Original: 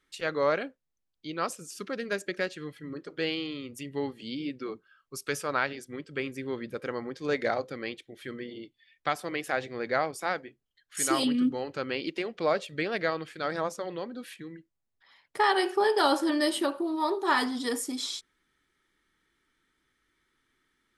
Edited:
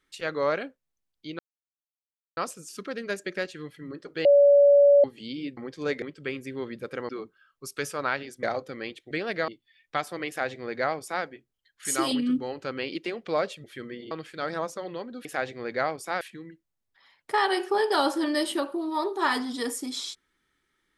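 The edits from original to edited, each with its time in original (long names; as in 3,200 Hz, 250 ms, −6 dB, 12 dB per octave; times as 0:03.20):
0:01.39: splice in silence 0.98 s
0:03.27–0:04.06: beep over 570 Hz −13 dBFS
0:04.59–0:05.93: swap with 0:07.00–0:07.45
0:08.13–0:08.60: swap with 0:12.76–0:13.13
0:09.40–0:10.36: duplicate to 0:14.27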